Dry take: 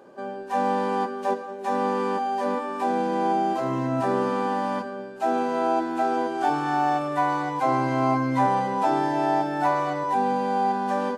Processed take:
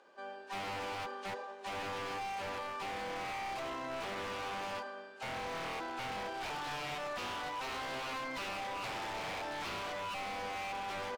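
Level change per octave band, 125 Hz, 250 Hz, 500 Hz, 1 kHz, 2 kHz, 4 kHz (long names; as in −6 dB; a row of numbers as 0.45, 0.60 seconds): −18.5, −22.5, −16.5, −16.5, −6.5, 0.0 decibels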